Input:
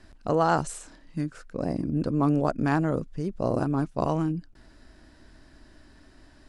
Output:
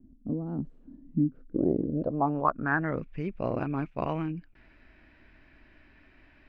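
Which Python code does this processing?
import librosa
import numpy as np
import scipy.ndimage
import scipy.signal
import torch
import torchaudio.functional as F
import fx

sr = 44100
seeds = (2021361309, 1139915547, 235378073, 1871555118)

y = fx.peak_eq(x, sr, hz=3400.0, db=14.5, octaves=2.1, at=(0.46, 2.5))
y = fx.rider(y, sr, range_db=4, speed_s=0.5)
y = fx.filter_sweep_lowpass(y, sr, from_hz=250.0, to_hz=2400.0, start_s=1.38, end_s=3.04, q=5.8)
y = y * librosa.db_to_amplitude(-6.0)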